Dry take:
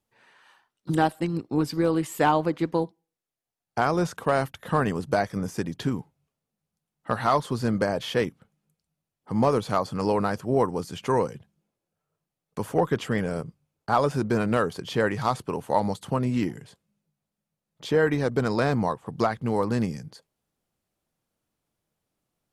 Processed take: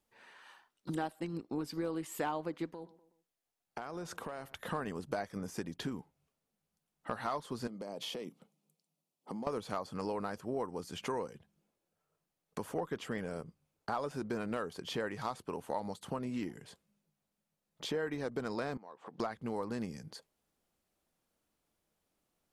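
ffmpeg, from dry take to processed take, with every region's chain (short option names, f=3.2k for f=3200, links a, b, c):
-filter_complex "[0:a]asettb=1/sr,asplit=3[a][b][c];[a]atrim=end=2.694[d];[b]atrim=start=2.69:end=4.56,asetpts=PTS-STARTPTS,afade=t=in:d=0.004:c=qsin,afade=t=out:st=1.866:d=0.004:c=qsin,acompressor=threshold=-36dB:ratio=4:attack=3.2:release=140:knee=1:detection=peak,asplit=2[e][f];[f]adelay=124,lowpass=f=2.5k:p=1,volume=-22dB,asplit=2[g][h];[h]adelay=124,lowpass=f=2.5k:p=1,volume=0.41,asplit=2[i][j];[j]adelay=124,lowpass=f=2.5k:p=1,volume=0.41[k];[e][g][i][k]amix=inputs=4:normalize=0,atrim=end_sample=82467[l];[c]atrim=start=4.556[m];[d][l]acrossfade=d=0.004:c1=hsin:c2=qsin[n];[n][m]acrossfade=d=0.004:c1=qsin:c2=hsin,asettb=1/sr,asplit=3[o][p][q];[o]atrim=end=7.674[r];[p]atrim=start=7.67:end=9.47,asetpts=PTS-STARTPTS,afade=t=in:d=0.004:c=qsin,afade=t=out:st=1.796:d=0.004:c=qsin,highpass=f=150:w=0.5412,highpass=f=150:w=1.3066,equalizer=f=1.6k:w=2.1:g=-13,acompressor=threshold=-32dB:ratio=12:attack=3.2:release=140:knee=1:detection=peak[s];[q]atrim=start=9.466[t];[r][s]acrossfade=d=0.004:c1=hsin:c2=qsin[u];[u][t]acrossfade=d=0.004:c1=qsin:c2=hsin,asettb=1/sr,asplit=3[v][w][x];[v]atrim=end=18.774[y];[w]atrim=start=18.77:end=19.2,asetpts=PTS-STARTPTS,afade=t=in:d=0.004:c=qsin,afade=t=out:st=0.426:d=0.004:c=qsin,acompressor=threshold=-39dB:ratio=6:attack=3.2:release=140:knee=1:detection=peak,highpass=280,lowpass=4.9k[z];[x]atrim=start=19.196[aa];[y][z]acrossfade=d=0.004:c1=hsin:c2=qsin[ab];[ab][aa]acrossfade=d=0.004:c1=qsin:c2=hsin,equalizer=f=120:w=1.6:g=-8,acompressor=threshold=-40dB:ratio=2.5"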